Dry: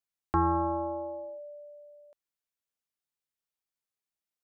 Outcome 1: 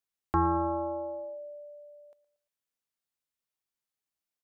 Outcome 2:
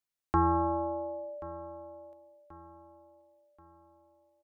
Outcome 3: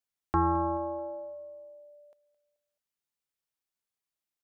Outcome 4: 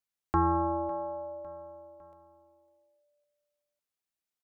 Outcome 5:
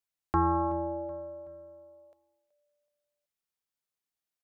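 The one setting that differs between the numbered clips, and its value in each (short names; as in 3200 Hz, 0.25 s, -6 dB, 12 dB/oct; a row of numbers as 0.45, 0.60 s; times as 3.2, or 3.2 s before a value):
feedback echo, time: 0.116, 1.082, 0.216, 0.554, 0.376 s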